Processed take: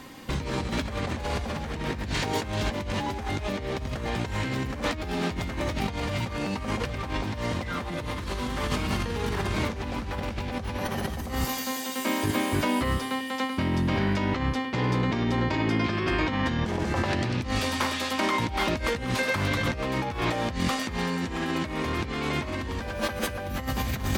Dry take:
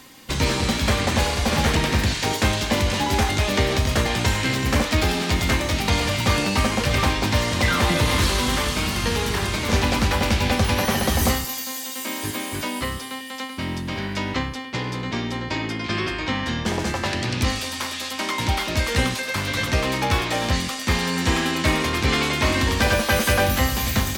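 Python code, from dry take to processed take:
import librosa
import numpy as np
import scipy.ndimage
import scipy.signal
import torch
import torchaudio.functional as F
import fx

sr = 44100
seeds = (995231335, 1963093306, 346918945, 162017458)

y = fx.high_shelf(x, sr, hz=2500.0, db=-11.0)
y = fx.over_compress(y, sr, threshold_db=-29.0, ratio=-1.0)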